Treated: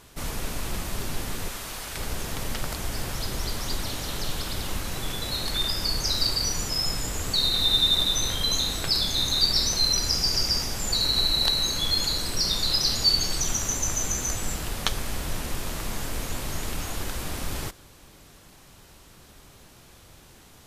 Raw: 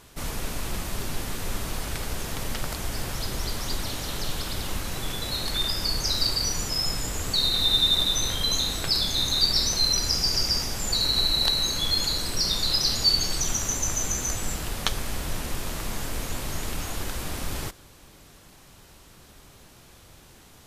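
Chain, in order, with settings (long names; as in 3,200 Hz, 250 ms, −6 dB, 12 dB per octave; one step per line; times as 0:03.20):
0:01.48–0:01.97: low-shelf EQ 450 Hz −11 dB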